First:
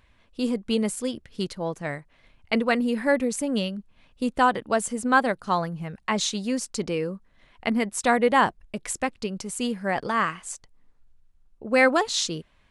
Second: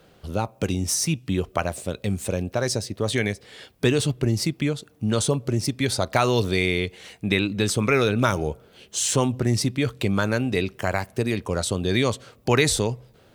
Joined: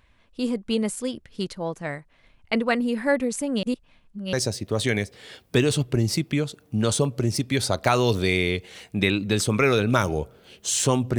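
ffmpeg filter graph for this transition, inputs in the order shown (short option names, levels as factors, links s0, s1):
-filter_complex "[0:a]apad=whole_dur=11.18,atrim=end=11.18,asplit=2[s0][s1];[s0]atrim=end=3.632[s2];[s1]atrim=start=3.628:end=4.332,asetpts=PTS-STARTPTS,areverse[s3];[1:a]atrim=start=2.618:end=9.47[s4];[s2][s3]acrossfade=d=0.004:c1=hsin:c2=hsin[s5];[s5][s4]acrossfade=d=0.004:c1=hsin:c2=hsin"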